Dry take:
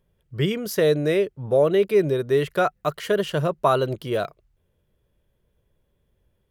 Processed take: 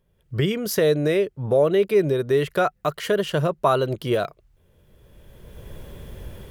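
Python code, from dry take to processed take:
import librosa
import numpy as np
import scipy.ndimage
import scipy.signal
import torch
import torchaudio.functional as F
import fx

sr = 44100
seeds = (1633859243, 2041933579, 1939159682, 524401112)

y = fx.recorder_agc(x, sr, target_db=-13.5, rise_db_per_s=19.0, max_gain_db=30)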